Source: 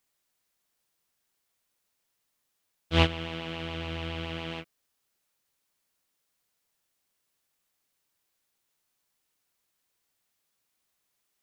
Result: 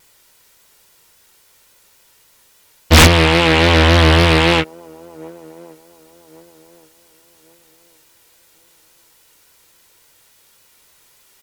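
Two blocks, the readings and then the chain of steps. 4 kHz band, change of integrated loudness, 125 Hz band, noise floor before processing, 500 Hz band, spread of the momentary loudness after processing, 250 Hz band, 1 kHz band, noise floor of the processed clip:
+19.0 dB, +20.0 dB, +19.5 dB, -79 dBFS, +20.5 dB, 6 LU, +19.5 dB, +21.0 dB, -54 dBFS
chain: comb 2.1 ms, depth 33%; on a send: feedback echo behind a band-pass 1123 ms, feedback 32%, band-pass 480 Hz, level -24 dB; on the sum: sine folder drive 19 dB, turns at -5 dBFS; vibrato 3.6 Hz 65 cents; loudspeaker Doppler distortion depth 0.95 ms; trim +2.5 dB

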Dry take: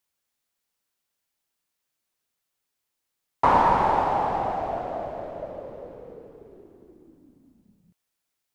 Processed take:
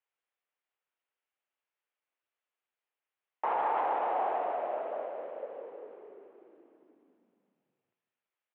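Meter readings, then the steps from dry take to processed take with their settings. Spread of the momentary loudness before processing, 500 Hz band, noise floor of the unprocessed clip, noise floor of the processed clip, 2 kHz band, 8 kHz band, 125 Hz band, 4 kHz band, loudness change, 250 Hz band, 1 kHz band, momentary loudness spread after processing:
21 LU, -6.0 dB, -82 dBFS, under -85 dBFS, -9.5 dB, no reading, under -30 dB, under -10 dB, -9.0 dB, -16.5 dB, -9.5 dB, 18 LU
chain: peak limiter -16.5 dBFS, peak gain reduction 8.5 dB; on a send: feedback delay 186 ms, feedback 43%, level -11.5 dB; on the sum: mistuned SSB -64 Hz 460–3100 Hz; trim -5 dB

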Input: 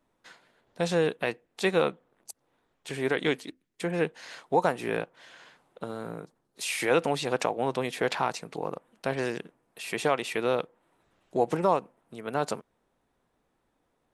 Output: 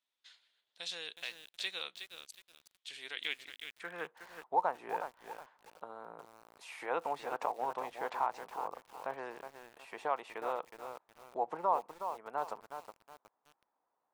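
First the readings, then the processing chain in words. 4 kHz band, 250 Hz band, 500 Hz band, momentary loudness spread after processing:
-6.0 dB, -20.5 dB, -13.5 dB, 17 LU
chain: treble shelf 7.4 kHz +12 dB; band-pass sweep 3.6 kHz -> 930 Hz, 3.06–4.24 s; bit-crushed delay 367 ms, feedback 35%, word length 8-bit, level -8 dB; trim -2.5 dB

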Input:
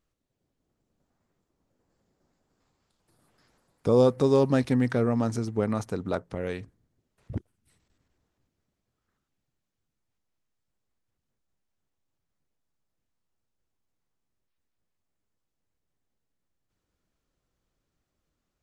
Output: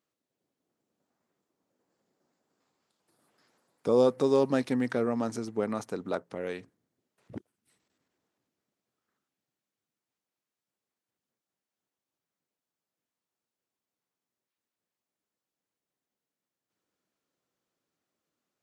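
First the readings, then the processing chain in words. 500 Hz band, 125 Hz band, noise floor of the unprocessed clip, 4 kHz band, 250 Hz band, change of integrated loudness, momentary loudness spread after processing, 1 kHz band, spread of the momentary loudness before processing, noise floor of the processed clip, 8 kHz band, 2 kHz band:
-2.0 dB, -12.0 dB, -82 dBFS, -2.0 dB, -4.0 dB, -3.5 dB, 21 LU, -2.0 dB, 18 LU, under -85 dBFS, -2.0 dB, -2.0 dB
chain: high-pass 220 Hz 12 dB/octave; trim -2 dB

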